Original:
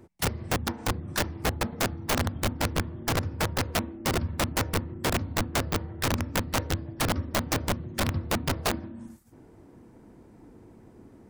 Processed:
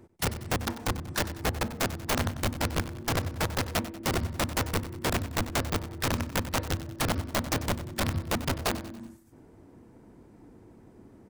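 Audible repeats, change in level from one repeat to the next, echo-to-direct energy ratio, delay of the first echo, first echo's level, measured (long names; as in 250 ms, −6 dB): 4, −6.5 dB, −13.0 dB, 94 ms, −14.0 dB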